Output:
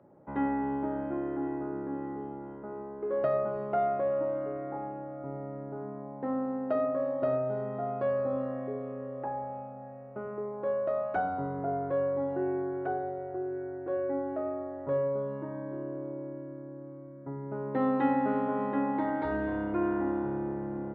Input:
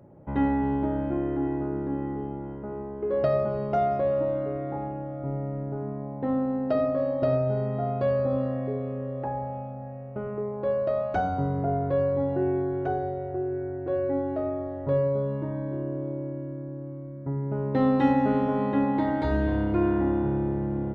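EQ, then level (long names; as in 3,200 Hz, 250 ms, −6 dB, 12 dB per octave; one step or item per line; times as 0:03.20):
three-way crossover with the lows and the highs turned down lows −12 dB, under 180 Hz, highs −16 dB, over 2,800 Hz
parametric band 1,300 Hz +4.5 dB 1.3 octaves
−5.0 dB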